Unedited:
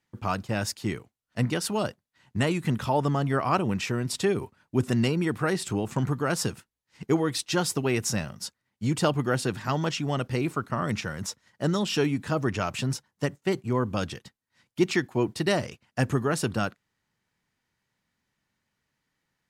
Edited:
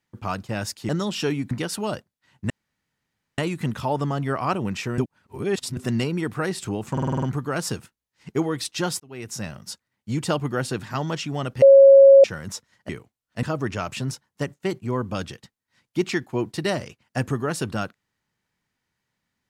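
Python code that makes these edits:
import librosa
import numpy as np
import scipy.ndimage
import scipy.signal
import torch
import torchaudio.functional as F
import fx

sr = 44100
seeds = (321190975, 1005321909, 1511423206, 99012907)

y = fx.edit(x, sr, fx.swap(start_s=0.89, length_s=0.54, other_s=11.63, other_length_s=0.62),
    fx.insert_room_tone(at_s=2.42, length_s=0.88),
    fx.reverse_span(start_s=4.02, length_s=0.79),
    fx.stutter(start_s=5.96, slice_s=0.05, count=7),
    fx.fade_in_span(start_s=7.74, length_s=0.62),
    fx.bleep(start_s=10.36, length_s=0.62, hz=548.0, db=-6.5), tone=tone)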